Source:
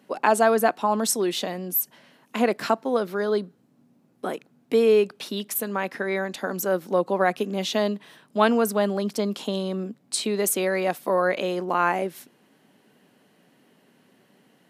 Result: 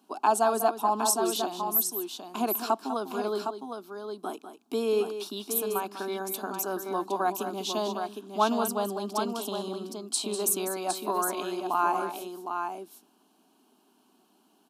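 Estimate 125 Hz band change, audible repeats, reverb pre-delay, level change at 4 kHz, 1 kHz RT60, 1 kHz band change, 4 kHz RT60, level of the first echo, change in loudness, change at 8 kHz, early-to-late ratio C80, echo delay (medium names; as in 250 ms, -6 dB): under -10 dB, 2, no reverb, -3.5 dB, no reverb, -1.5 dB, no reverb, -10.5 dB, -5.0 dB, -0.5 dB, no reverb, 198 ms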